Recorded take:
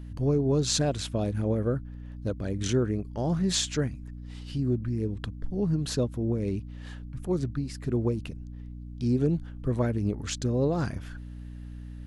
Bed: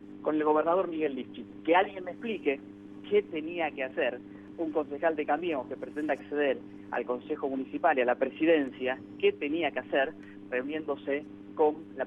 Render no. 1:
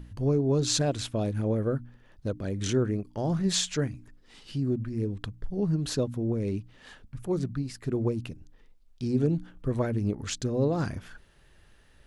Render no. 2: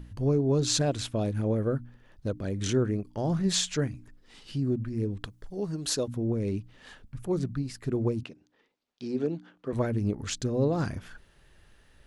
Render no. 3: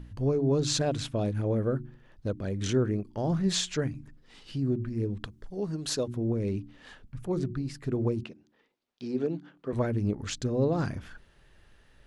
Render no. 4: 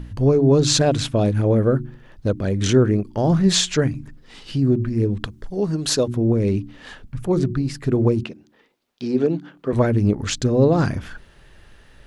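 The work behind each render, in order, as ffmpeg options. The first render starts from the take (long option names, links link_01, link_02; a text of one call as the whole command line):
ffmpeg -i in.wav -af "bandreject=frequency=60:width_type=h:width=4,bandreject=frequency=120:width_type=h:width=4,bandreject=frequency=180:width_type=h:width=4,bandreject=frequency=240:width_type=h:width=4,bandreject=frequency=300:width_type=h:width=4" out.wav
ffmpeg -i in.wav -filter_complex "[0:a]asettb=1/sr,asplit=3[link_01][link_02][link_03];[link_01]atrim=end=5.264[link_04];[link_02]atrim=start=5.26:end=6.08,asetpts=PTS-STARTPTS,afade=type=in:duration=0.004:curve=qsin,afade=type=out:start_time=0.816:duration=0.004:curve=qsin,bass=frequency=250:gain=-10,treble=frequency=4000:gain=7[link_05];[link_03]atrim=start=6.076[link_06];[link_04][link_05]acrossfade=duration=0.004:curve1=hsin:curve2=qsin[link_07];[link_07][link_06]acrossfade=duration=0.004:curve1=qsin:curve2=hsin,asettb=1/sr,asplit=3[link_08][link_09][link_10];[link_08]atrim=end=8.234[link_11];[link_09]atrim=start=8.23:end=9.73,asetpts=PTS-STARTPTS,afade=type=in:duration=0.004:curve=qsin,afade=type=out:start_time=1.496:duration=0.004:curve=qsin,highpass=290,lowpass=5400[link_12];[link_10]atrim=start=9.726[link_13];[link_11][link_12]acrossfade=duration=0.004:curve1=hsin:curve2=qsin[link_14];[link_14][link_13]acrossfade=duration=0.004:curve1=qsin:curve2=hsin" out.wav
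ffmpeg -i in.wav -af "highshelf=frequency=7800:gain=-7.5,bandreject=frequency=72.55:width_type=h:width=4,bandreject=frequency=145.1:width_type=h:width=4,bandreject=frequency=217.65:width_type=h:width=4,bandreject=frequency=290.2:width_type=h:width=4,bandreject=frequency=362.75:width_type=h:width=4" out.wav
ffmpeg -i in.wav -af "volume=10.5dB" out.wav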